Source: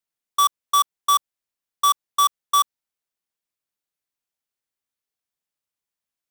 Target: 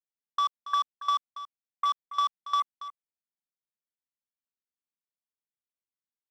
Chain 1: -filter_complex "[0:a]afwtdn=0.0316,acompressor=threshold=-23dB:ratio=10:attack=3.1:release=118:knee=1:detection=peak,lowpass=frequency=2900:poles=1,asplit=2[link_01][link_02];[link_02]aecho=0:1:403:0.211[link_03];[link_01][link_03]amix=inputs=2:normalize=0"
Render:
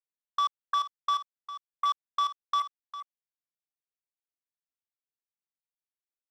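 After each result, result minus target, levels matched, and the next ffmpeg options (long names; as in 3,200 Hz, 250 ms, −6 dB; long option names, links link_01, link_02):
echo 123 ms late; 250 Hz band −5.0 dB
-filter_complex "[0:a]afwtdn=0.0316,acompressor=threshold=-23dB:ratio=10:attack=3.1:release=118:knee=1:detection=peak,lowpass=frequency=2900:poles=1,asplit=2[link_01][link_02];[link_02]aecho=0:1:280:0.211[link_03];[link_01][link_03]amix=inputs=2:normalize=0"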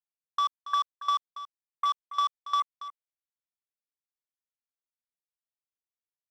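250 Hz band −6.0 dB
-filter_complex "[0:a]afwtdn=0.0316,acompressor=threshold=-23dB:ratio=10:attack=3.1:release=118:knee=1:detection=peak,lowpass=frequency=2900:poles=1,equalizer=frequency=230:width_type=o:width=0.96:gain=10,asplit=2[link_01][link_02];[link_02]aecho=0:1:280:0.211[link_03];[link_01][link_03]amix=inputs=2:normalize=0"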